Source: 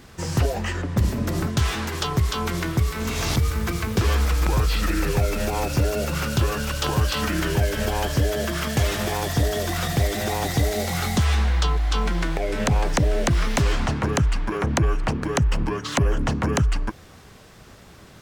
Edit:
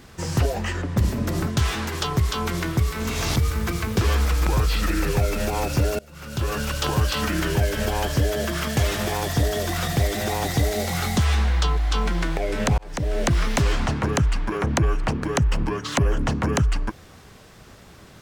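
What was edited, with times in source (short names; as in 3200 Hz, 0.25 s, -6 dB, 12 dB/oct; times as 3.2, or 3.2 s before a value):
5.99–6.55 fade in quadratic, from -24 dB
12.78–13.25 fade in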